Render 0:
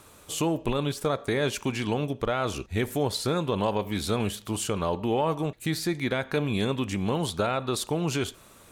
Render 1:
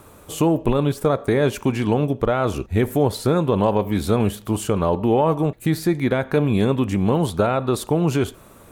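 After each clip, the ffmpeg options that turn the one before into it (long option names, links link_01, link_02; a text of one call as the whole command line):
ffmpeg -i in.wav -af "equalizer=frequency=4800:width=0.38:gain=-11,volume=9dB" out.wav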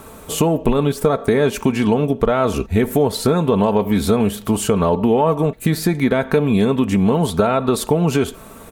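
ffmpeg -i in.wav -af "aecho=1:1:4.5:0.43,acompressor=threshold=-21dB:ratio=2.5,volume=7dB" out.wav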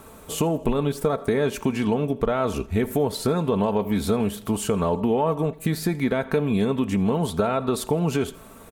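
ffmpeg -i in.wav -af "aecho=1:1:82|164|246|328:0.0631|0.0366|0.0212|0.0123,volume=-6.5dB" out.wav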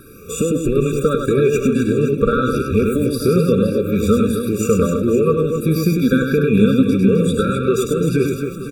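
ffmpeg -i in.wav -af "afftfilt=real='re*pow(10,11/40*sin(2*PI*(0.78*log(max(b,1)*sr/1024/100)/log(2)-(1.6)*(pts-256)/sr)))':imag='im*pow(10,11/40*sin(2*PI*(0.78*log(max(b,1)*sr/1024/100)/log(2)-(1.6)*(pts-256)/sr)))':win_size=1024:overlap=0.75,aecho=1:1:100|260|516|925.6|1581:0.631|0.398|0.251|0.158|0.1,afftfilt=real='re*eq(mod(floor(b*sr/1024/560),2),0)':imag='im*eq(mod(floor(b*sr/1024/560),2),0)':win_size=1024:overlap=0.75,volume=4.5dB" out.wav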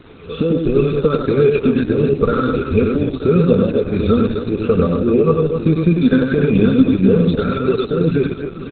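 ffmpeg -i in.wav -filter_complex "[0:a]acrusher=bits=6:mix=0:aa=0.000001,asplit=2[link_01][link_02];[link_02]adelay=12,volume=-12dB[link_03];[link_01][link_03]amix=inputs=2:normalize=0,volume=2dB" -ar 48000 -c:a libopus -b:a 8k out.opus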